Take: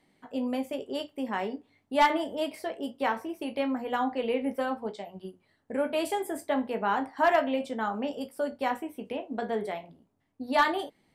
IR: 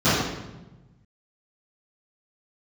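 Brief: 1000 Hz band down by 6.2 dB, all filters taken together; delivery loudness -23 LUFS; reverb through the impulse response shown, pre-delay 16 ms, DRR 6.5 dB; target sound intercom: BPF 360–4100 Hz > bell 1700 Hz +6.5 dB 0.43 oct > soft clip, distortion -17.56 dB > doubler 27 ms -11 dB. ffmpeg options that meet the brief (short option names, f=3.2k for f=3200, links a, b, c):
-filter_complex "[0:a]equalizer=f=1k:t=o:g=-8.5,asplit=2[a][b];[1:a]atrim=start_sample=2205,adelay=16[c];[b][c]afir=irnorm=-1:irlink=0,volume=-27.5dB[d];[a][d]amix=inputs=2:normalize=0,highpass=360,lowpass=4.1k,equalizer=f=1.7k:t=o:w=0.43:g=6.5,asoftclip=threshold=-19.5dB,asplit=2[e][f];[f]adelay=27,volume=-11dB[g];[e][g]amix=inputs=2:normalize=0,volume=10dB"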